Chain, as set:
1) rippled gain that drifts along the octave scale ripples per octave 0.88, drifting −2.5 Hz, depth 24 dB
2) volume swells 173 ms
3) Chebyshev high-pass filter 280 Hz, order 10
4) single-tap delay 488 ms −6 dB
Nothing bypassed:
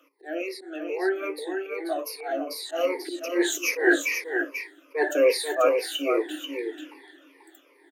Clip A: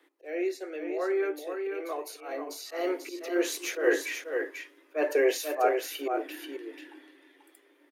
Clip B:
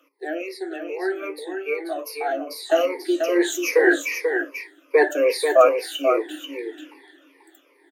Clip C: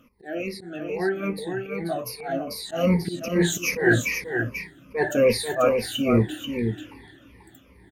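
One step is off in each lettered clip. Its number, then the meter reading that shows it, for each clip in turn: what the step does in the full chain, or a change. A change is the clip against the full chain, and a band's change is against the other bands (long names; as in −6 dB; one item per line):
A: 1, 1 kHz band +3.5 dB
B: 2, 1 kHz band +4.0 dB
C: 3, 250 Hz band +4.5 dB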